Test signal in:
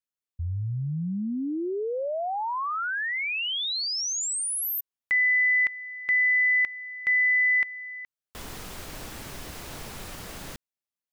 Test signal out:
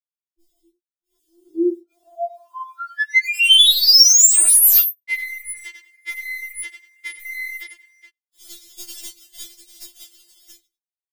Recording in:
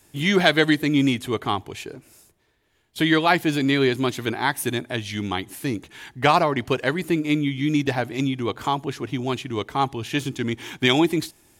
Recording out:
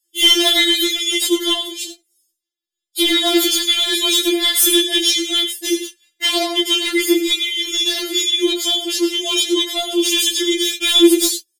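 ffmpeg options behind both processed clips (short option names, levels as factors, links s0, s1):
-filter_complex "[0:a]aecho=1:1:3.5:0.88,asplit=2[s0][s1];[s1]aecho=0:1:95|190:0.251|0.0427[s2];[s0][s2]amix=inputs=2:normalize=0,agate=range=0.0178:threshold=0.0282:ratio=16:release=288:detection=peak,acrossover=split=120[s3][s4];[s4]acompressor=threshold=0.126:ratio=4:attack=6.8:release=170:knee=2.83:detection=peak[s5];[s3][s5]amix=inputs=2:normalize=0,flanger=delay=20:depth=7.9:speed=0.91,equalizer=f=510:t=o:w=1.8:g=13,aexciter=amount=9.2:drive=9:freq=2400,asoftclip=type=hard:threshold=0.473,afftfilt=real='re*4*eq(mod(b,16),0)':imag='im*4*eq(mod(b,16),0)':win_size=2048:overlap=0.75,volume=0.841"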